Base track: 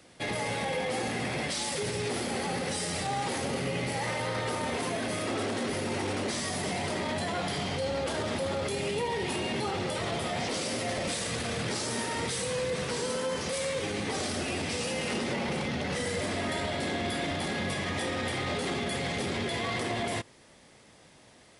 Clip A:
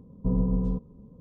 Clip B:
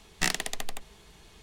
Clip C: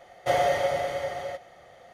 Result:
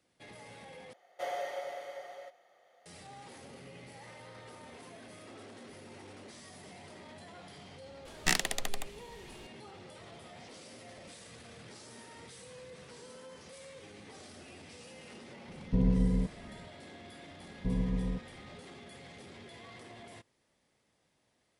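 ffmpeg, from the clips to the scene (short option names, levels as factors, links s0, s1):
-filter_complex "[1:a]asplit=2[s0][s1];[0:a]volume=0.112[s2];[3:a]highpass=370[s3];[s0]lowpass=1000[s4];[s2]asplit=2[s5][s6];[s5]atrim=end=0.934[s7];[s3]atrim=end=1.93,asetpts=PTS-STARTPTS,volume=0.224[s8];[s6]atrim=start=2.856[s9];[2:a]atrim=end=1.42,asetpts=PTS-STARTPTS,volume=0.891,afade=t=in:d=0.004:c=hsin,afade=t=out:st=1.416:d=0.004:c=hsin,adelay=8050[s10];[s4]atrim=end=1.2,asetpts=PTS-STARTPTS,volume=0.794,afade=t=in:d=0.004:c=hsin,afade=t=out:st=1.196:d=0.004:c=hsin,adelay=15480[s11];[s1]atrim=end=1.2,asetpts=PTS-STARTPTS,volume=0.447,afade=t=in:d=0.004:c=hsin,afade=t=out:st=1.196:d=0.004:c=hsin,adelay=17400[s12];[s7][s8]acrossfade=d=0.004:c1=hsin:c2=hsin[s13];[s13][s9]acrossfade=d=0.004:c1=hsin:c2=hsin[s14];[s14][s10][s11][s12]amix=inputs=4:normalize=0"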